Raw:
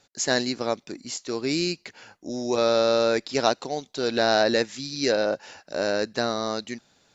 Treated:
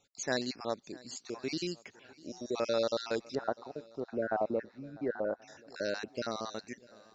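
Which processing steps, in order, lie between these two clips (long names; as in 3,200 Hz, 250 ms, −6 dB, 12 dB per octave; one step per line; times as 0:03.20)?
time-frequency cells dropped at random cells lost 42%
0:03.35–0:05.42: low-pass filter 1,500 Hz 24 dB per octave
feedback echo with a long and a short gap by turns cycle 1,081 ms, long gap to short 1.5 to 1, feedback 35%, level −22.5 dB
level −8.5 dB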